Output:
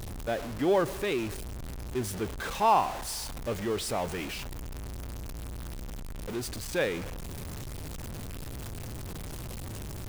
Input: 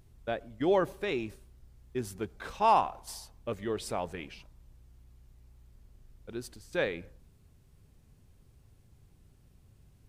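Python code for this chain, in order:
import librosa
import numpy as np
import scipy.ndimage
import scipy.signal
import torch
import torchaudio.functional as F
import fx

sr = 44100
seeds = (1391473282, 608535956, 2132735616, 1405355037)

y = x + 0.5 * 10.0 ** (-33.0 / 20.0) * np.sign(x)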